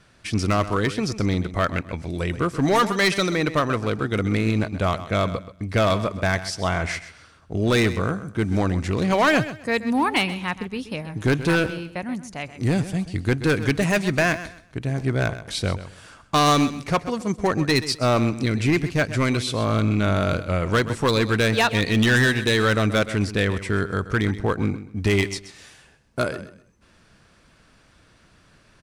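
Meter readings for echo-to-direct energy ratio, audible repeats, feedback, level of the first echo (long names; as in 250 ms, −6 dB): −13.5 dB, 2, 24%, −13.5 dB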